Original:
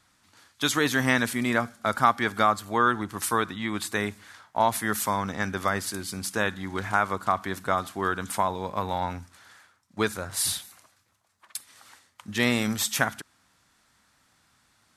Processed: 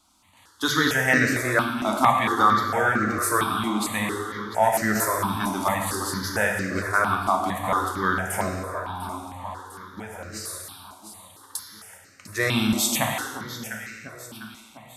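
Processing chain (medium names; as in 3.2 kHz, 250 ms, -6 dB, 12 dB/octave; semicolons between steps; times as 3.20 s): de-hum 47.86 Hz, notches 2; 8.49–10.60 s: compression 12:1, threshold -34 dBFS, peak gain reduction 15.5 dB; echo whose repeats swap between lows and highs 350 ms, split 1.2 kHz, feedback 72%, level -9 dB; gated-style reverb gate 430 ms falling, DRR 1 dB; stepped phaser 4.4 Hz 480–3400 Hz; trim +3.5 dB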